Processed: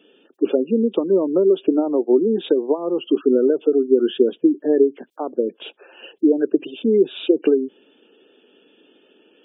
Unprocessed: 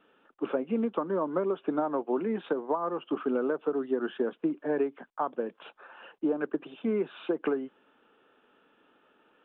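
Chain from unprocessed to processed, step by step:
high-pass filter 78 Hz 6 dB per octave
gate on every frequency bin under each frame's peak −20 dB strong
drawn EQ curve 160 Hz 0 dB, 380 Hz +9 dB, 1,200 Hz −13 dB, 3,300 Hz +12 dB
level +6.5 dB

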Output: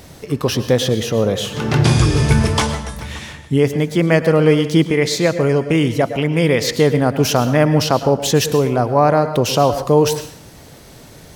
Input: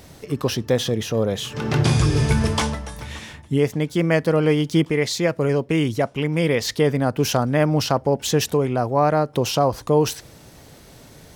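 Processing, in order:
dense smooth reverb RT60 0.55 s, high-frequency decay 0.9×, pre-delay 95 ms, DRR 10.5 dB
level +4.5 dB

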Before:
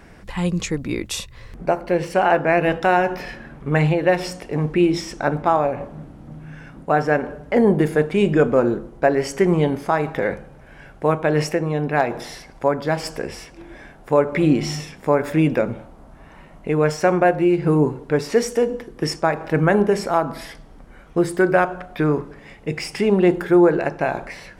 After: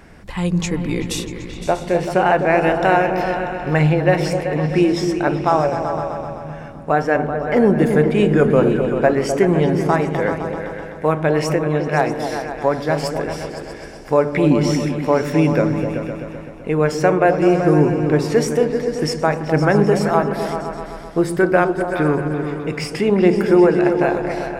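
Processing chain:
tape wow and flutter 25 cents
echo whose low-pass opens from repeat to repeat 128 ms, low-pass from 200 Hz, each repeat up 2 octaves, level −3 dB
level +1 dB

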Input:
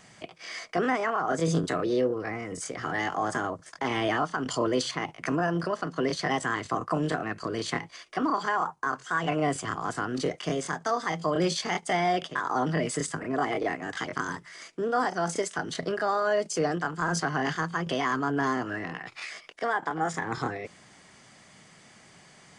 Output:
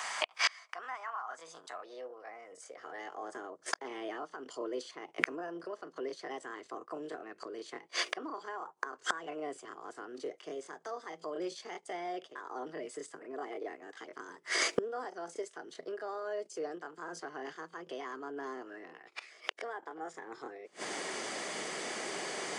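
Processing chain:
high-pass filter sweep 990 Hz → 390 Hz, 0:01.33–0:03.36
gate with flip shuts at −30 dBFS, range −31 dB
level +14.5 dB

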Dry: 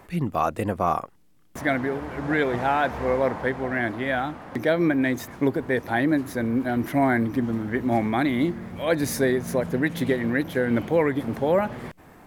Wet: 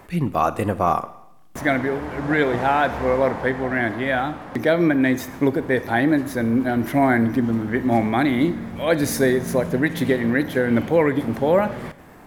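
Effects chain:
four-comb reverb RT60 0.84 s, combs from 27 ms, DRR 13.5 dB
level +3.5 dB

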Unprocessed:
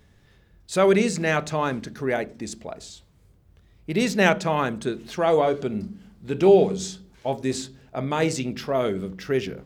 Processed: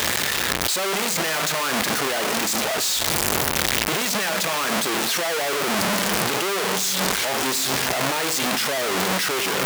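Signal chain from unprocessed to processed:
sign of each sample alone
high-pass filter 940 Hz 6 dB per octave
in parallel at +3 dB: compressor whose output falls as the input rises −33 dBFS, ratio −0.5
on the sum: level +1.5 dB

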